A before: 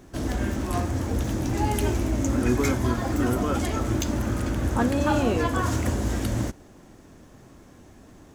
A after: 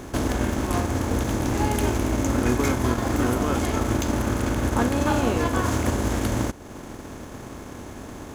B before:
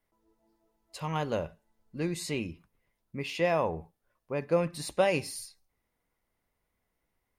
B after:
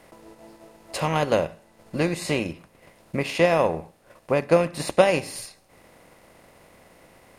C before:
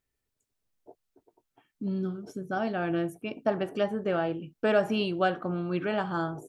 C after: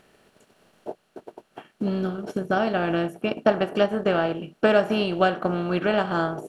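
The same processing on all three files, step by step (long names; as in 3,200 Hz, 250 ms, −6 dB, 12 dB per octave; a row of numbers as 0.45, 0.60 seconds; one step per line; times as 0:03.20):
compressor on every frequency bin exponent 0.6
transient designer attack +4 dB, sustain −6 dB
loudness normalisation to −24 LKFS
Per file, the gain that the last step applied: −2.5, +4.0, +2.0 decibels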